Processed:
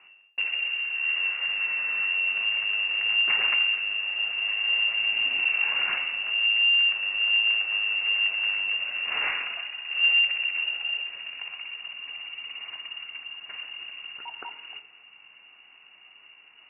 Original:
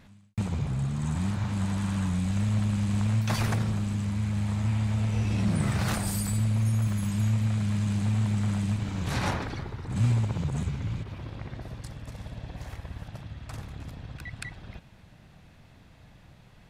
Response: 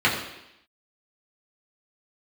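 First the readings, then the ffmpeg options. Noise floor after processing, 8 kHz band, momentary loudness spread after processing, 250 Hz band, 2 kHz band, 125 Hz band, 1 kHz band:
-54 dBFS, under -40 dB, 17 LU, under -30 dB, +18.0 dB, under -40 dB, -3.0 dB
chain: -filter_complex "[0:a]asplit=2[a][b];[1:a]atrim=start_sample=2205,lowpass=4.1k[c];[b][c]afir=irnorm=-1:irlink=0,volume=-25.5dB[d];[a][d]amix=inputs=2:normalize=0,lowpass=f=2.5k:t=q:w=0.5098,lowpass=f=2.5k:t=q:w=0.6013,lowpass=f=2.5k:t=q:w=0.9,lowpass=f=2.5k:t=q:w=2.563,afreqshift=-2900"

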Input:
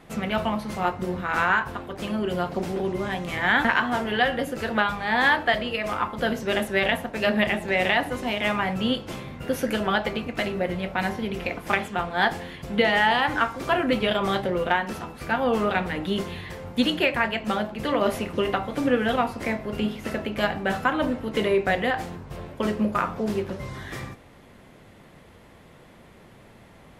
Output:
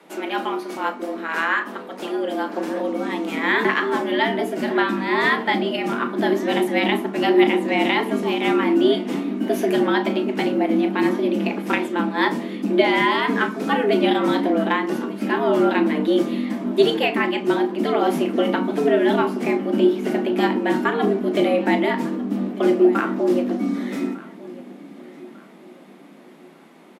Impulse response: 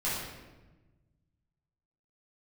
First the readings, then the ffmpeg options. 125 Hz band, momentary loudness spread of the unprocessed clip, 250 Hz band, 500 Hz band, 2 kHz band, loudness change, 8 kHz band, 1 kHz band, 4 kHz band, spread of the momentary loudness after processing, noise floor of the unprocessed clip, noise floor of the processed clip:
+0.5 dB, 9 LU, +7.5 dB, +6.0 dB, +0.5 dB, +4.5 dB, n/a, +2.0 dB, +1.0 dB, 8 LU, -50 dBFS, -45 dBFS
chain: -filter_complex "[0:a]acrossover=split=180[a][b];[a]dynaudnorm=f=640:g=11:m=16dB[c];[c][b]amix=inputs=2:normalize=0,afreqshift=150,asplit=2[d][e];[e]adelay=36,volume=-12dB[f];[d][f]amix=inputs=2:normalize=0,asplit=2[g][h];[h]adelay=1198,lowpass=f=4.8k:p=1,volume=-19dB,asplit=2[i][j];[j]adelay=1198,lowpass=f=4.8k:p=1,volume=0.38,asplit=2[k][l];[l]adelay=1198,lowpass=f=4.8k:p=1,volume=0.38[m];[g][i][k][m]amix=inputs=4:normalize=0"

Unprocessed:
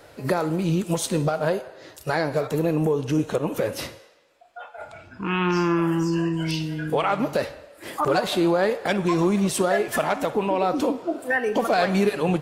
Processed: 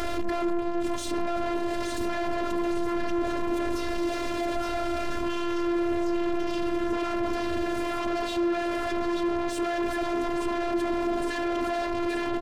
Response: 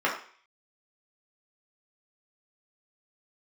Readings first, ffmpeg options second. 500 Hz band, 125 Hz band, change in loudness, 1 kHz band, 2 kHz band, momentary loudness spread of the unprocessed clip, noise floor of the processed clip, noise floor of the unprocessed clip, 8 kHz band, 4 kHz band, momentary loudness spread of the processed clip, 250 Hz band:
-5.0 dB, -17.0 dB, -5.0 dB, -4.0 dB, -5.5 dB, 13 LU, -30 dBFS, -50 dBFS, -8.0 dB, -4.5 dB, 3 LU, -3.0 dB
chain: -filter_complex "[0:a]aeval=exprs='val(0)+0.5*0.0447*sgn(val(0))':c=same,acompressor=mode=upward:threshold=-27dB:ratio=2.5,aemphasis=mode=reproduction:type=bsi,asplit=2[a][b];[b]aecho=0:1:868|1736|2604|3472|4340|5208|6076:0.501|0.271|0.146|0.0789|0.0426|0.023|0.0124[c];[a][c]amix=inputs=2:normalize=0,asoftclip=type=tanh:threshold=-23dB,afftfilt=real='hypot(re,im)*cos(PI*b)':imag='0':win_size=512:overlap=0.75,alimiter=limit=-22.5dB:level=0:latency=1:release=15,volume=5.5dB"

